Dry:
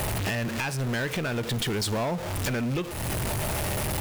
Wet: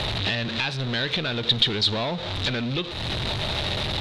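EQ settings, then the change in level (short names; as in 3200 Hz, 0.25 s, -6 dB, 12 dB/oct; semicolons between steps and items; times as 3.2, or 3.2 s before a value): synth low-pass 3800 Hz, resonance Q 8; 0.0 dB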